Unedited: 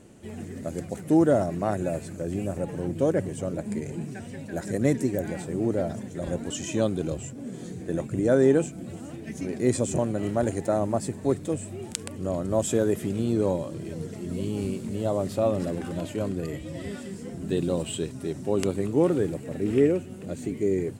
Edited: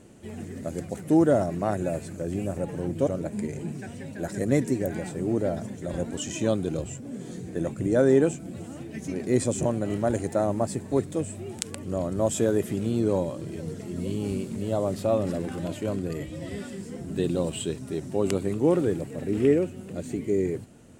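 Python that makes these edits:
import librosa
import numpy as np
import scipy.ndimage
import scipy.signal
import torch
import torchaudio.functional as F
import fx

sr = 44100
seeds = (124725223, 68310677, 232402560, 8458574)

y = fx.edit(x, sr, fx.cut(start_s=3.07, length_s=0.33), tone=tone)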